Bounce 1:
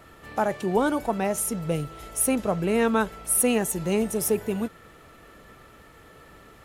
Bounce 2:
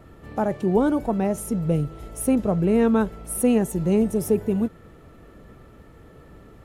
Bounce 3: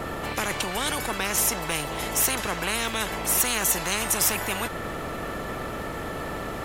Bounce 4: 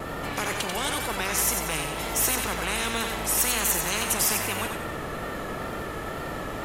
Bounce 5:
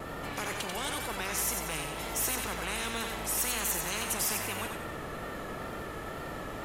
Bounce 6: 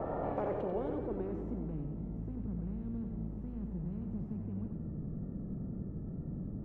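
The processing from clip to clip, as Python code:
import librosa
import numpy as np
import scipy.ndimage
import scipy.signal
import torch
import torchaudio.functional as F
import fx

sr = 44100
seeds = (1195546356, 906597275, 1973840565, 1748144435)

y1 = fx.tilt_shelf(x, sr, db=7.5, hz=660.0)
y2 = fx.spectral_comp(y1, sr, ratio=10.0)
y3 = fx.wow_flutter(y2, sr, seeds[0], rate_hz=2.1, depth_cents=58.0)
y3 = fx.echo_feedback(y3, sr, ms=91, feedback_pct=43, wet_db=-5.0)
y3 = y3 * librosa.db_to_amplitude(-2.0)
y4 = 10.0 ** (-14.0 / 20.0) * np.tanh(y3 / 10.0 ** (-14.0 / 20.0))
y4 = y4 * librosa.db_to_amplitude(-6.0)
y5 = fx.filter_sweep_lowpass(y4, sr, from_hz=740.0, to_hz=190.0, start_s=0.16, end_s=2.08, q=2.0)
y5 = y5 * librosa.db_to_amplitude(1.5)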